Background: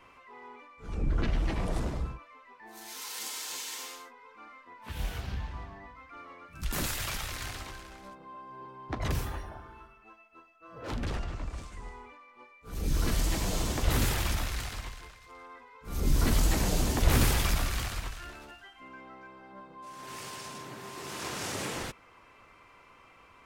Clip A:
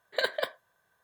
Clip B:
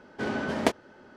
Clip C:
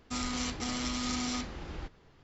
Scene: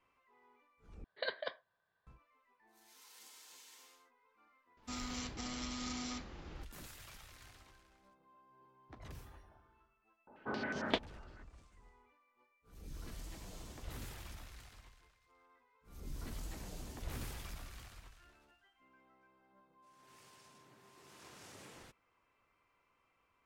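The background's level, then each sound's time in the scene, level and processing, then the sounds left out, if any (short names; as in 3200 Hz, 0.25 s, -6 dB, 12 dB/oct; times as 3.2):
background -20 dB
1.04 replace with A -10.5 dB + downsampling 11025 Hz
4.77 add C -8.5 dB
10.27 add B -11 dB + stepped low-pass 11 Hz 880–6200 Hz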